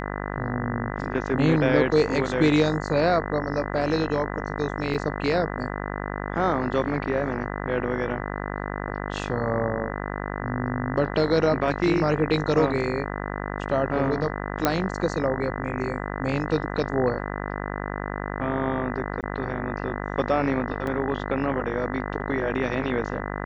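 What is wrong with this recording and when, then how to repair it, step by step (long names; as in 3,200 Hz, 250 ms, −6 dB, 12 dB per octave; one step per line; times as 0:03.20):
mains buzz 50 Hz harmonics 40 −31 dBFS
0:04.94–0:04.95: drop-out 5.2 ms
0:14.65: click −5 dBFS
0:19.21–0:19.23: drop-out 18 ms
0:20.87: drop-out 2.2 ms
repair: click removal
hum removal 50 Hz, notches 40
repair the gap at 0:04.94, 5.2 ms
repair the gap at 0:19.21, 18 ms
repair the gap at 0:20.87, 2.2 ms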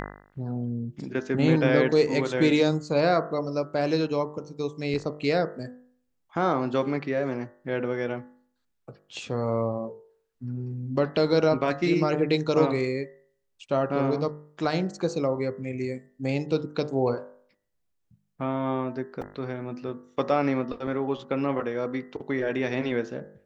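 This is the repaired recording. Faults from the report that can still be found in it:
none of them is left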